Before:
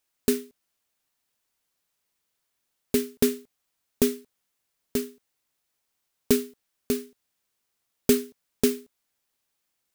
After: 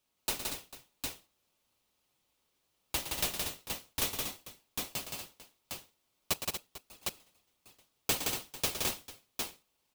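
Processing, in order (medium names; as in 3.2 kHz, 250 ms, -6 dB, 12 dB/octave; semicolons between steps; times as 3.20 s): 6.33–7.03 s: resonances exaggerated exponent 2; rippled Chebyshev high-pass 830 Hz, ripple 6 dB; comb 5.5 ms, depth 54%; multi-tap echo 113/170/230/237/446/757 ms -10/-4/-16.5/-8.5/-17/-4 dB; in parallel at -6 dB: sample-rate reducer 1.8 kHz, jitter 0%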